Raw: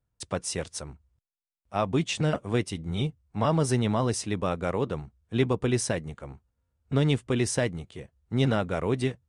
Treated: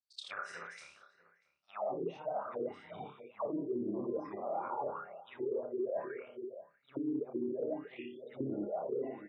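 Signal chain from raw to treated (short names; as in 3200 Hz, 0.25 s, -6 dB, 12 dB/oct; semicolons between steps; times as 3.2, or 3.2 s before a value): short-time reversal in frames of 0.165 s; on a send: flutter echo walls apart 5 m, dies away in 0.51 s; on the sum: auto-wah 310–4600 Hz, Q 10, down, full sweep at -21.5 dBFS; outdoor echo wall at 110 m, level -19 dB; spectral gate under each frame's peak -30 dB strong; reverse; compressor 6:1, threshold -44 dBFS, peak gain reduction 14.5 dB; reverse; gain +10 dB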